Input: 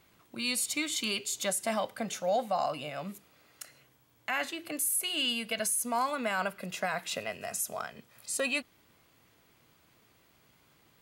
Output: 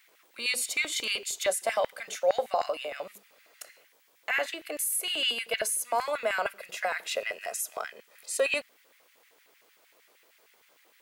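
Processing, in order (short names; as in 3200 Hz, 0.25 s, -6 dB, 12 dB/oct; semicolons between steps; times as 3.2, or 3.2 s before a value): notches 50/100/150/200/250 Hz; added noise white -70 dBFS; LFO high-pass square 6.5 Hz 490–1900 Hz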